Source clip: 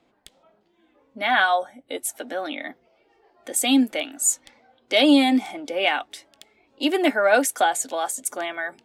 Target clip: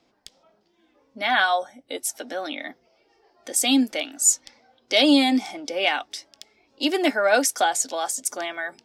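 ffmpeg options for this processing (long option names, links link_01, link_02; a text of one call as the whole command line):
ffmpeg -i in.wav -af "equalizer=frequency=5300:width=2.1:gain=13,volume=-1.5dB" out.wav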